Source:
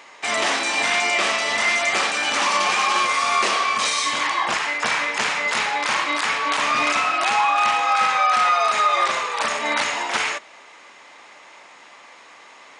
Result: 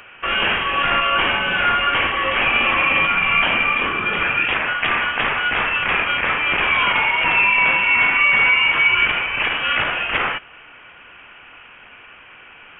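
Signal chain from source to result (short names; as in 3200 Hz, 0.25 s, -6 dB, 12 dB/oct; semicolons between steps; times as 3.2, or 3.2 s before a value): short-mantissa float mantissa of 2-bit; inverted band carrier 3500 Hz; gain +3 dB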